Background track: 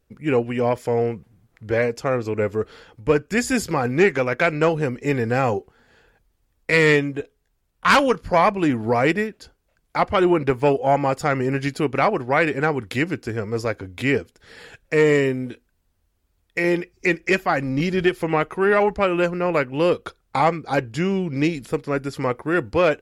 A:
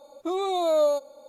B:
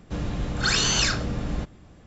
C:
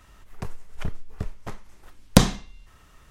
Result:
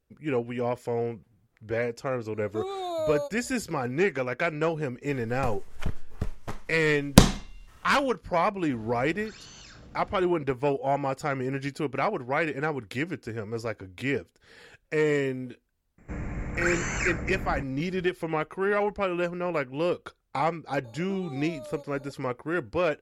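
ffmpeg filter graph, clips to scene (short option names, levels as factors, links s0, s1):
-filter_complex "[1:a]asplit=2[s0][s1];[2:a]asplit=2[s2][s3];[0:a]volume=0.398[s4];[s2]acompressor=threshold=0.0398:ratio=6:attack=3.2:release=140:knee=1:detection=peak[s5];[s3]firequalizer=gain_entry='entry(1200,0);entry(2200,9);entry(3300,-25);entry(8000,3)':delay=0.05:min_phase=1[s6];[s1]acompressor=threshold=0.01:ratio=6:attack=3.2:release=140:knee=1:detection=peak[s7];[s0]atrim=end=1.28,asetpts=PTS-STARTPTS,volume=0.447,afade=t=in:d=0.1,afade=t=out:st=1.18:d=0.1,adelay=2290[s8];[3:a]atrim=end=3.1,asetpts=PTS-STARTPTS,afade=t=in:d=0.1,afade=t=out:st=3:d=0.1,adelay=220941S[s9];[s5]atrim=end=2.06,asetpts=PTS-STARTPTS,volume=0.15,afade=t=in:d=0.004:c=hsin,afade=t=out:st=2.056:d=0.004:c=hsin,adelay=8620[s10];[s6]atrim=end=2.06,asetpts=PTS-STARTPTS,volume=0.531,afade=t=in:d=0.004:c=hsin,afade=t=out:st=2.056:d=0.004:c=hsin,adelay=15980[s11];[s7]atrim=end=1.28,asetpts=PTS-STARTPTS,volume=0.794,afade=t=in:d=0.004:c=hsin,afade=t=out:st=1.276:d=0.004:c=hsin,adelay=919044S[s12];[s4][s8][s9][s10][s11][s12]amix=inputs=6:normalize=0"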